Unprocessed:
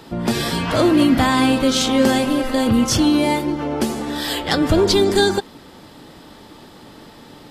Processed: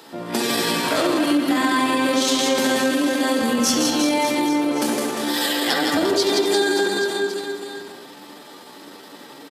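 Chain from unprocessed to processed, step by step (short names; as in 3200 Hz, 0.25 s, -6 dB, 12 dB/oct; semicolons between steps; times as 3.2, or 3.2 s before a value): HPF 320 Hz 12 dB/oct; reverse bouncing-ball echo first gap 0.13 s, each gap 1.15×, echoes 5; on a send at -1 dB: reverb RT60 0.45 s, pre-delay 45 ms; on the sum: tempo 0.79×; compressor, threshold -14 dBFS, peak gain reduction 8 dB; high shelf 5400 Hz +7 dB; gain -2 dB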